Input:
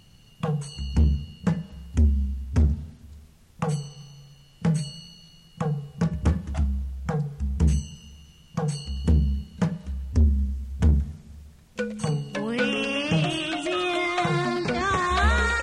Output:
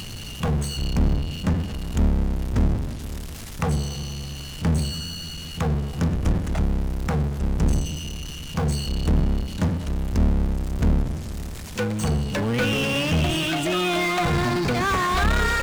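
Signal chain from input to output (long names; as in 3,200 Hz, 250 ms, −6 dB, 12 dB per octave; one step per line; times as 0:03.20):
sub-octave generator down 1 octave, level 0 dB
power curve on the samples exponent 0.5
one half of a high-frequency compander encoder only
level −6 dB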